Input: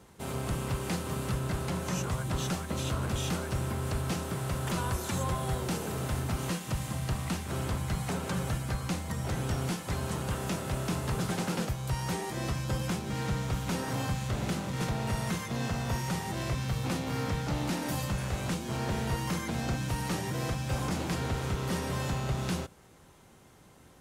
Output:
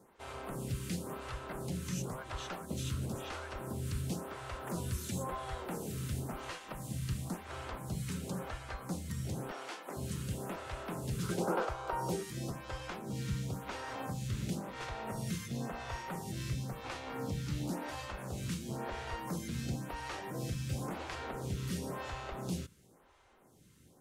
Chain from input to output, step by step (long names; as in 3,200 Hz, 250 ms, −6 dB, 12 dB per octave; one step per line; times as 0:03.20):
0:09.51–0:09.97: high-pass filter 230 Hz 24 dB per octave
0:11.23–0:12.23: gain on a spectral selection 310–1,600 Hz +9 dB
phaser with staggered stages 0.96 Hz
level −3.5 dB